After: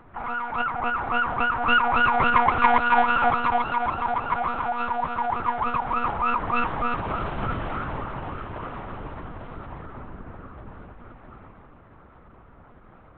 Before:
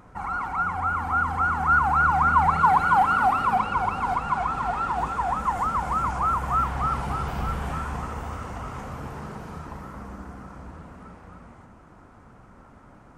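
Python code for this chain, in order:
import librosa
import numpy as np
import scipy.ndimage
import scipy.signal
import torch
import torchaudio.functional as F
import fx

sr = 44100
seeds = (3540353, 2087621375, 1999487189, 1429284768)

y = fx.tracing_dist(x, sr, depth_ms=0.1)
y = fx.lpc_monotone(y, sr, seeds[0], pitch_hz=240.0, order=8)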